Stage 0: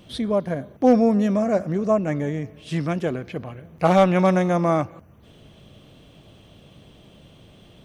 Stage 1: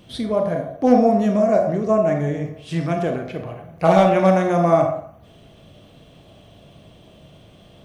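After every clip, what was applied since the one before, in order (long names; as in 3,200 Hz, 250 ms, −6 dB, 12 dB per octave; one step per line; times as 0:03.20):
on a send at −5 dB: parametric band 690 Hz +12 dB 0.43 octaves + convolution reverb RT60 0.55 s, pre-delay 27 ms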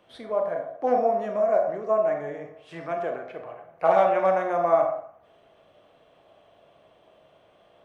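three-way crossover with the lows and the highs turned down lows −21 dB, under 440 Hz, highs −15 dB, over 2,100 Hz
level −2.5 dB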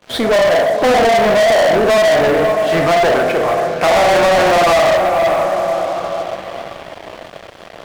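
feedback delay with all-pass diffusion 566 ms, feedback 41%, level −15 dB
brickwall limiter −17.5 dBFS, peak gain reduction 10 dB
leveller curve on the samples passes 5
level +8.5 dB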